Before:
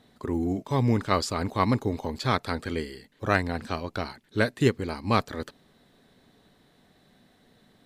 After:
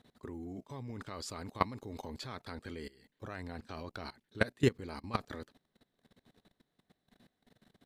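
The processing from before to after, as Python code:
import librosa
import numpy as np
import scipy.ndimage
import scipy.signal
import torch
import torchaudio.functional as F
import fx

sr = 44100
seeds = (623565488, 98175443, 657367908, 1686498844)

y = fx.high_shelf(x, sr, hz=2500.0, db=3.0, at=(1.16, 2.09))
y = fx.level_steps(y, sr, step_db=20)
y = y * librosa.db_to_amplitude(-3.0)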